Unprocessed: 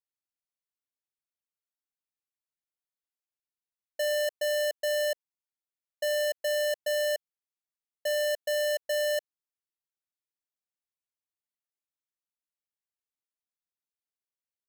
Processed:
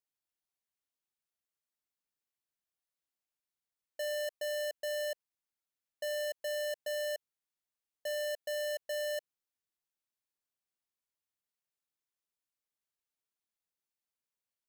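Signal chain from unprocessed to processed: limiter -35 dBFS, peak gain reduction 7.5 dB

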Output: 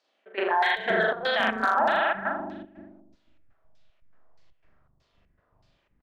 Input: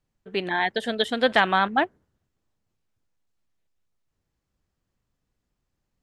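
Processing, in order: on a send: flutter echo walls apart 7 m, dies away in 1.1 s; on the sum: LFO low-pass saw down 1.6 Hz 850–5000 Hz; reverse; compressor 16:1, threshold -22 dBFS, peak gain reduction 14 dB; reverse; dynamic EQ 1300 Hz, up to +7 dB, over -41 dBFS, Q 1.2; overloaded stage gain 13 dB; bell 630 Hz +8 dB 0.28 oct; limiter -23 dBFS, peak gain reduction 13.5 dB; step gate "xx.xxx.xx.xx.xx" 120 bpm -12 dB; bands offset in time highs, lows 0.52 s, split 340 Hz; gain +8.5 dB

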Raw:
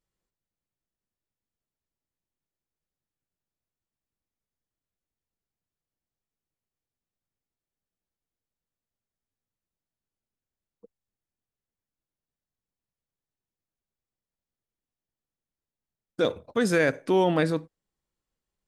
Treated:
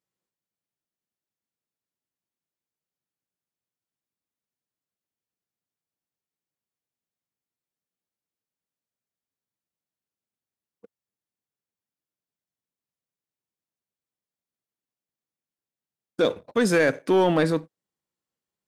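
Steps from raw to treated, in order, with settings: HPF 130 Hz 12 dB/oct; sample leveller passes 1

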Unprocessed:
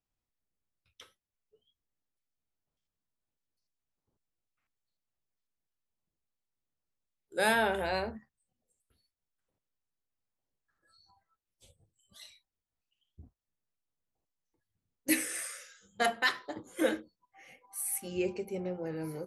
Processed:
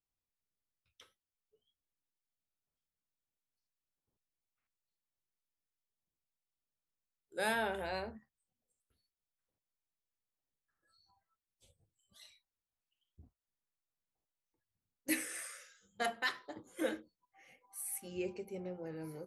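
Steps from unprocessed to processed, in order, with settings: 12.24–15.69 bell 1200 Hz +3 dB 2 oct; gain -7 dB

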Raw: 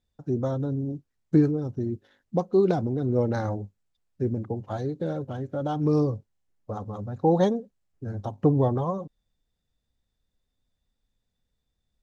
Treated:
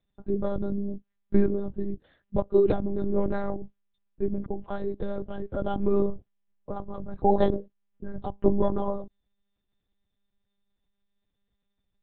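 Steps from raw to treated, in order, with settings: monotone LPC vocoder at 8 kHz 200 Hz

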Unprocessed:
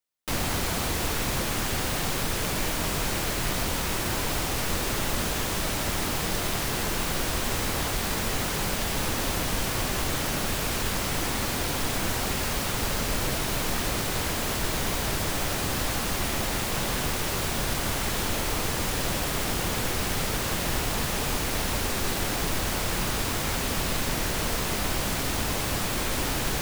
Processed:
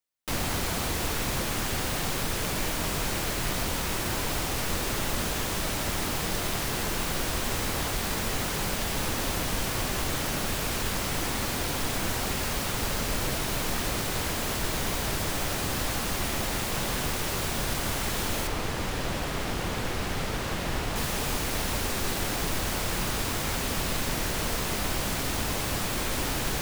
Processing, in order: 18.47–20.96 high shelf 5700 Hz -10 dB; gain -1.5 dB

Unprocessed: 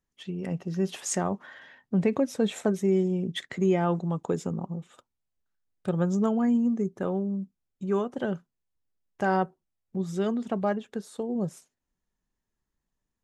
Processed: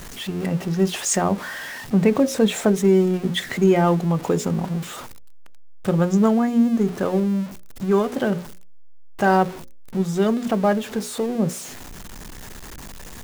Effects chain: zero-crossing step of -37.5 dBFS; notches 60/120/180/240/300/360/420/480/540/600 Hz; gain +7.5 dB

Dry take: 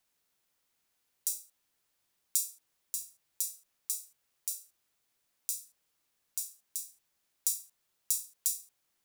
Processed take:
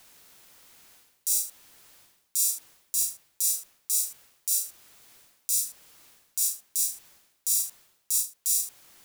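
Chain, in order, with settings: reverse; compressor 8:1, threshold -45 dBFS, peak gain reduction 21.5 dB; reverse; maximiser +31 dB; gain -8 dB

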